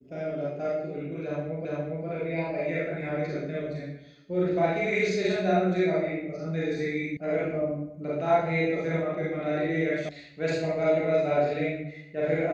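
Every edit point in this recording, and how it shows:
1.65 repeat of the last 0.41 s
7.17 sound cut off
10.09 sound cut off

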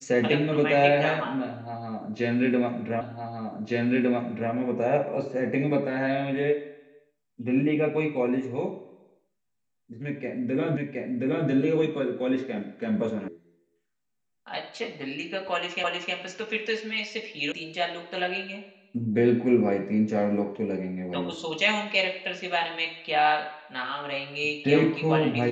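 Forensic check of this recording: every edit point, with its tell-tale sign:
3.01 repeat of the last 1.51 s
10.77 repeat of the last 0.72 s
13.28 sound cut off
15.84 repeat of the last 0.31 s
17.52 sound cut off

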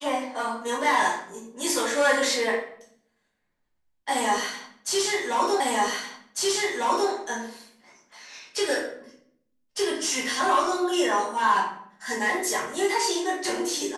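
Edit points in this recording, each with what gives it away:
5.6 repeat of the last 1.5 s

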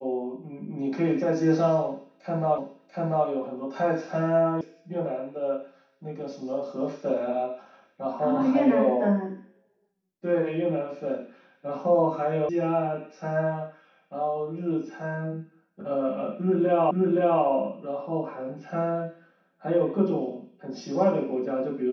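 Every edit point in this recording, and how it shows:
2.58 repeat of the last 0.69 s
4.61 sound cut off
12.49 sound cut off
16.91 repeat of the last 0.52 s

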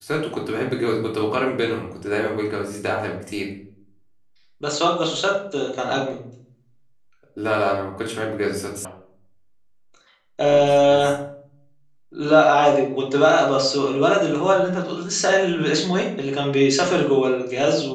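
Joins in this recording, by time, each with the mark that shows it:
8.85 sound cut off

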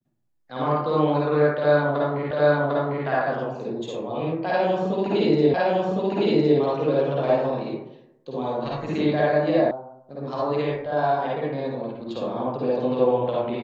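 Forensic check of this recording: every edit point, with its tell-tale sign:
2.31 repeat of the last 0.75 s
5.54 repeat of the last 1.06 s
9.71 sound cut off

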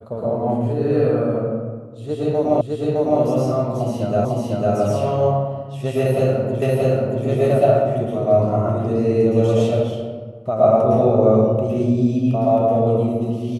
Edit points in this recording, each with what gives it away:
2.61 repeat of the last 0.61 s
4.25 repeat of the last 0.5 s
6.62 repeat of the last 0.63 s

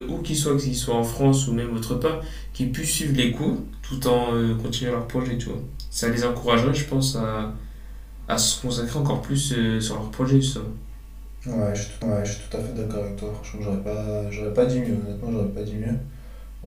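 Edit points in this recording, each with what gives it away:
12.02 repeat of the last 0.5 s

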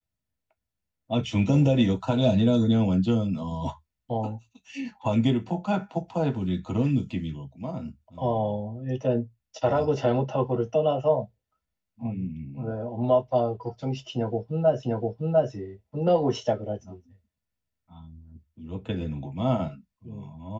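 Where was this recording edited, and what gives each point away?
14.83 repeat of the last 0.7 s

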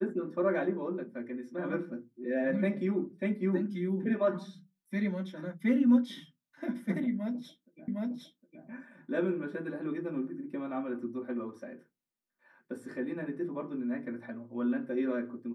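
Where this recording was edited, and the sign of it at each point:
7.88 repeat of the last 0.76 s

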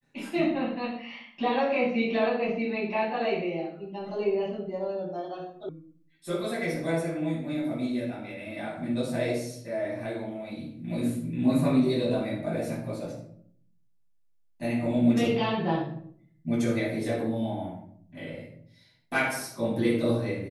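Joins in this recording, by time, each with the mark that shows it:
5.69 sound cut off

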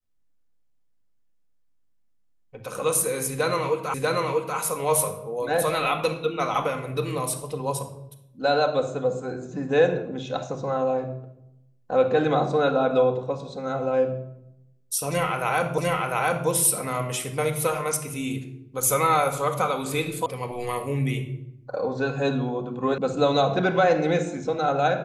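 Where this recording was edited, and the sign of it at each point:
3.94 repeat of the last 0.64 s
15.78 repeat of the last 0.7 s
20.26 sound cut off
22.98 sound cut off

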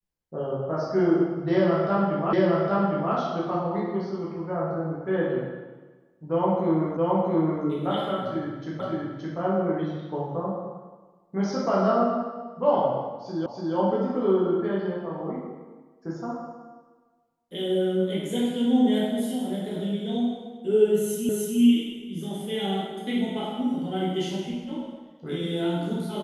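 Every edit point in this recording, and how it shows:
2.33 repeat of the last 0.81 s
6.97 repeat of the last 0.67 s
8.8 repeat of the last 0.57 s
13.46 repeat of the last 0.29 s
21.29 repeat of the last 0.3 s

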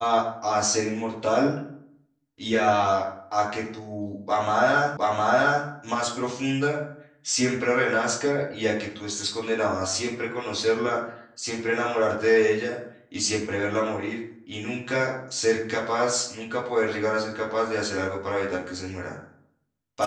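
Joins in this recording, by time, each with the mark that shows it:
4.97 repeat of the last 0.71 s

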